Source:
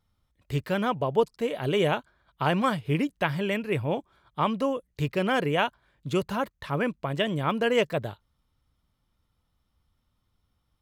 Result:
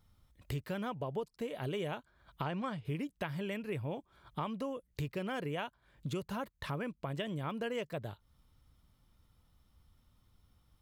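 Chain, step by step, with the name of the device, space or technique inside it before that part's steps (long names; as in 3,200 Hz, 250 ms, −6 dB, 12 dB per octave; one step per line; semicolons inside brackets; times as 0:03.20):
0:02.44–0:02.85: high-frequency loss of the air 72 metres
ASMR close-microphone chain (low-shelf EQ 240 Hz +4 dB; downward compressor 4 to 1, threshold −41 dBFS, peak gain reduction 20.5 dB; high-shelf EQ 7,300 Hz +4.5 dB)
level +2.5 dB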